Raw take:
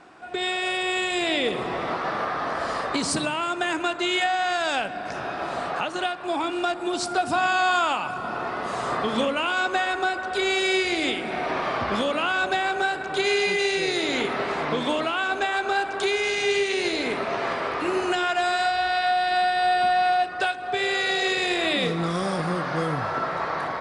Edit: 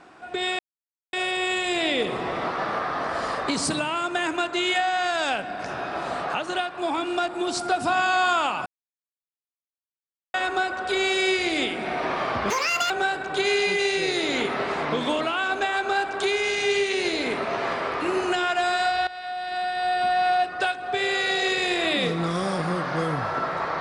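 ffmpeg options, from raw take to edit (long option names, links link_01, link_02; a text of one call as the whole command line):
ffmpeg -i in.wav -filter_complex "[0:a]asplit=7[link_01][link_02][link_03][link_04][link_05][link_06][link_07];[link_01]atrim=end=0.59,asetpts=PTS-STARTPTS,afade=type=out:start_time=0.586:duration=0.004:curve=hsin,apad=pad_dur=0.54[link_08];[link_02]atrim=start=0.59:end=8.12,asetpts=PTS-STARTPTS,afade=type=in:duration=0.004:curve=hsin,afade=type=out:start_time=7.526:duration=0.004:curve=hsin[link_09];[link_03]atrim=start=8.12:end=9.8,asetpts=PTS-STARTPTS,volume=0[link_10];[link_04]atrim=start=9.8:end=11.964,asetpts=PTS-STARTPTS,afade=type=in:duration=0.004:curve=hsin[link_11];[link_05]atrim=start=11.96:end=12.7,asetpts=PTS-STARTPTS,asetrate=81144,aresample=44100[link_12];[link_06]atrim=start=12.696:end=18.87,asetpts=PTS-STARTPTS,afade=type=out:start_time=6.17:duration=0.004:curve=hsin:silence=0.16788[link_13];[link_07]atrim=start=18.87,asetpts=PTS-STARTPTS,afade=type=in:duration=1.28:silence=0.16788[link_14];[link_08][link_09][link_10][link_11]concat=n=4:v=0:a=1[link_15];[link_15][link_12]acrossfade=duration=0.004:curve1=hsin:curve2=hsin[link_16];[link_13][link_14]concat=n=2:v=0:a=1[link_17];[link_16][link_17]acrossfade=duration=0.004:curve1=hsin:curve2=hsin" out.wav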